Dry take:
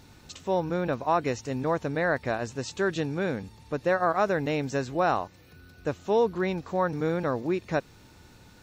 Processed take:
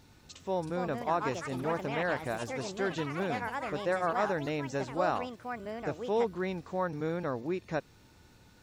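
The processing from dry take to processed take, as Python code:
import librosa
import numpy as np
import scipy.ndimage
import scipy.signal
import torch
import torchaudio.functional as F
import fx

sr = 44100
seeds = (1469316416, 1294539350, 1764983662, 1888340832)

y = fx.echo_pitch(x, sr, ms=406, semitones=5, count=3, db_per_echo=-6.0)
y = F.gain(torch.from_numpy(y), -6.0).numpy()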